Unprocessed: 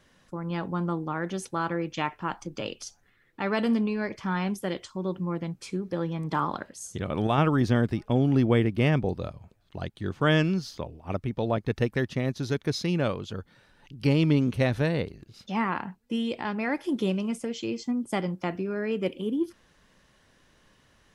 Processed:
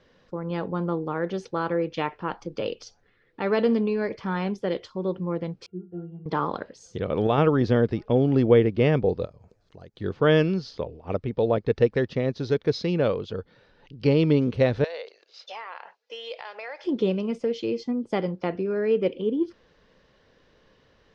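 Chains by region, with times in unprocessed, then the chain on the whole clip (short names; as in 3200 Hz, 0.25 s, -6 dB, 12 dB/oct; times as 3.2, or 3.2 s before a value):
5.66–6.26 high shelf 3300 Hz -10 dB + octave resonator F, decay 0.23 s + mismatched tape noise reduction decoder only
9.25–9.97 EQ curve 1900 Hz 0 dB, 3500 Hz -5 dB, 6800 Hz +13 dB + compressor 2.5:1, threshold -50 dBFS
14.84–16.84 elliptic band-pass 580–6800 Hz, stop band 60 dB + high shelf 3700 Hz +11.5 dB + compressor 4:1, threshold -35 dBFS
whole clip: Chebyshev low-pass 4900 Hz, order 3; bell 470 Hz +10 dB 0.54 oct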